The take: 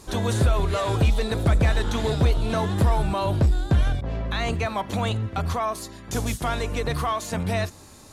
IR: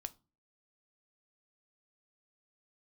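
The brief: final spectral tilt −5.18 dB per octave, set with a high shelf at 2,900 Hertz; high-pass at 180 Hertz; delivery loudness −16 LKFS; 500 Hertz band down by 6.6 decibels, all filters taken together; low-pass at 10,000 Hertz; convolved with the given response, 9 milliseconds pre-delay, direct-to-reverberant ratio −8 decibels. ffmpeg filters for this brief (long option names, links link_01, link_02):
-filter_complex "[0:a]highpass=180,lowpass=10000,equalizer=frequency=500:width_type=o:gain=-8.5,highshelf=frequency=2900:gain=-4,asplit=2[link_01][link_02];[1:a]atrim=start_sample=2205,adelay=9[link_03];[link_02][link_03]afir=irnorm=-1:irlink=0,volume=11.5dB[link_04];[link_01][link_04]amix=inputs=2:normalize=0,volume=5.5dB"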